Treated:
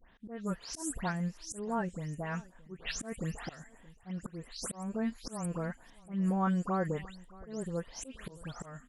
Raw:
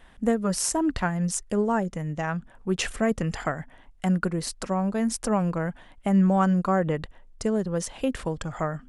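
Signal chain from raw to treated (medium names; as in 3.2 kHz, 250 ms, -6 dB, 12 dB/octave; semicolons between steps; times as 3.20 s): delay that grows with frequency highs late, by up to 203 ms; slow attack 234 ms; treble shelf 7.9 kHz +5 dB; on a send: delay 622 ms -22 dB; on the sum: trim -8 dB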